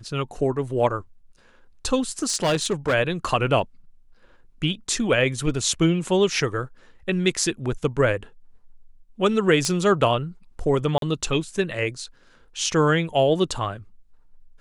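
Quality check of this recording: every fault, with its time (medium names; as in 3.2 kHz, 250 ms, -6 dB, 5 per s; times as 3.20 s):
2.12–2.94 s: clipped -17 dBFS
9.65 s: pop -11 dBFS
10.98–11.02 s: dropout 42 ms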